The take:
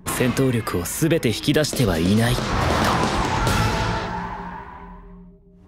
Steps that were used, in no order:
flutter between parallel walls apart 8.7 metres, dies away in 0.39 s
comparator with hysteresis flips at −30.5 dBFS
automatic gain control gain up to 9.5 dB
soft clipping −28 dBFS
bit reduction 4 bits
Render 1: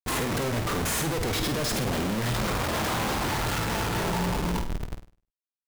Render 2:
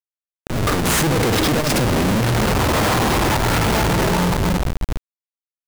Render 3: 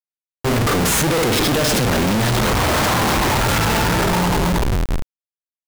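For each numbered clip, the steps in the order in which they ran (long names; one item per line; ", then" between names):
comparator with hysteresis, then automatic gain control, then bit reduction, then soft clipping, then flutter between parallel walls
soft clipping, then flutter between parallel walls, then comparator with hysteresis, then automatic gain control, then bit reduction
flutter between parallel walls, then comparator with hysteresis, then soft clipping, then automatic gain control, then bit reduction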